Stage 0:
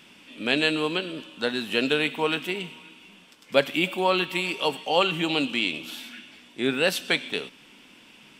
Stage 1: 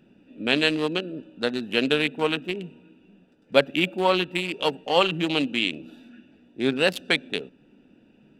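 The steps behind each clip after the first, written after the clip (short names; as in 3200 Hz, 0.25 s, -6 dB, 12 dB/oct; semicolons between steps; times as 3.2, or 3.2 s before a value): Wiener smoothing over 41 samples; gain +2.5 dB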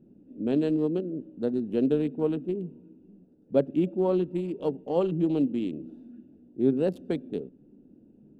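EQ curve 370 Hz 0 dB, 2300 Hz -29 dB, 7500 Hz -23 dB; gain +1.5 dB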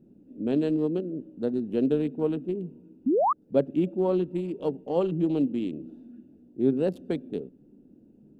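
painted sound rise, 3.06–3.33, 230–1300 Hz -22 dBFS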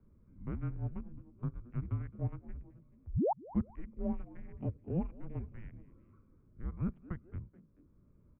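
mistuned SSB -340 Hz 460–2100 Hz; frequency-shifting echo 0.215 s, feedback 35%, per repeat +100 Hz, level -22.5 dB; three-band squash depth 40%; gain -4.5 dB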